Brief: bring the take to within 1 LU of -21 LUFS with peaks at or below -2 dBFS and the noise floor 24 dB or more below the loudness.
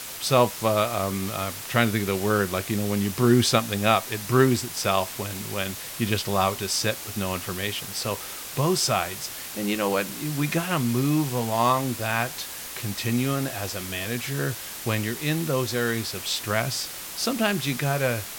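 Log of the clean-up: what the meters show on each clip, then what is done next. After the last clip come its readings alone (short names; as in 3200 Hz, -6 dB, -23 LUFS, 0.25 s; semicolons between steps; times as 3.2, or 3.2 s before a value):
noise floor -37 dBFS; noise floor target -49 dBFS; loudness -25.0 LUFS; peak -4.0 dBFS; loudness target -21.0 LUFS
-> denoiser 12 dB, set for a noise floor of -37 dBFS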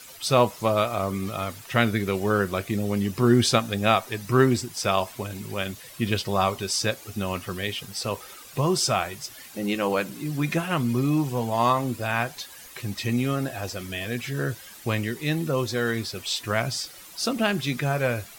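noise floor -45 dBFS; noise floor target -50 dBFS
-> denoiser 6 dB, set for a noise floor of -45 dBFS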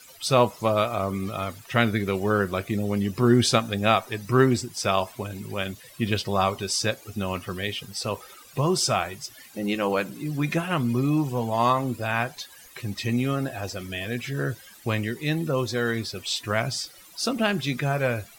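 noise floor -49 dBFS; noise floor target -50 dBFS
-> denoiser 6 dB, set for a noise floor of -49 dBFS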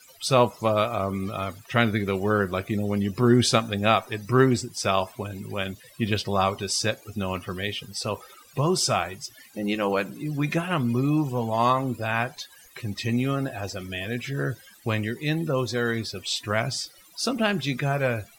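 noise floor -53 dBFS; loudness -25.5 LUFS; peak -4.5 dBFS; loudness target -21.0 LUFS
-> gain +4.5 dB; limiter -2 dBFS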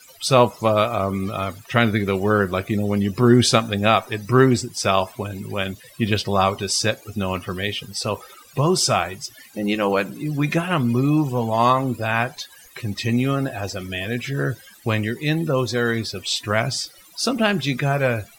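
loudness -21.5 LUFS; peak -2.0 dBFS; noise floor -48 dBFS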